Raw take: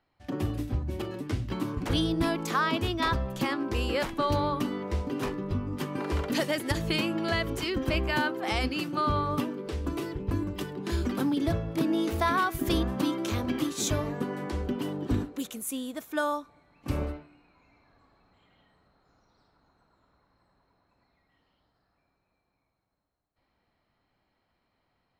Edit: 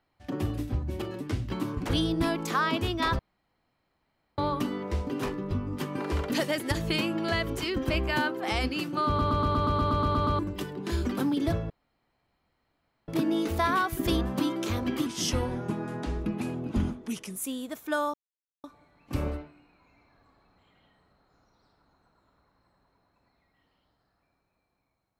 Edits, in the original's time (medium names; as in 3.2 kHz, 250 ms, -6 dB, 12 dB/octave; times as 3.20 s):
3.19–4.38 s: room tone
9.07 s: stutter in place 0.12 s, 11 plays
11.70 s: insert room tone 1.38 s
13.68–15.61 s: speed 84%
16.39 s: insert silence 0.50 s